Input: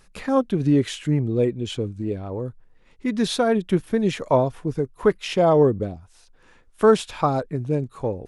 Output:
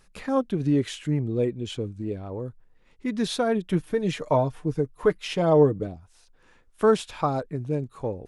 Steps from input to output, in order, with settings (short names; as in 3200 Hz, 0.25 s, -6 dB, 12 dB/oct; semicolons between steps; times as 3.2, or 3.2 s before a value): 3.68–5.87 comb 6.6 ms, depth 50%; gain -4 dB